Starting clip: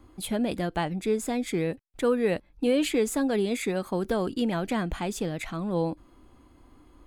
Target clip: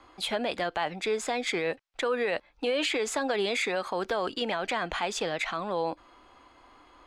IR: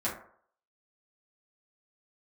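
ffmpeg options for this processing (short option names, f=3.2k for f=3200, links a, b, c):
-filter_complex "[0:a]acrossover=split=530 6400:gain=0.1 1 0.0708[a][b][c];[a][b][c]amix=inputs=3:normalize=0,alimiter=level_in=4.5dB:limit=-24dB:level=0:latency=1:release=53,volume=-4.5dB,volume=9dB"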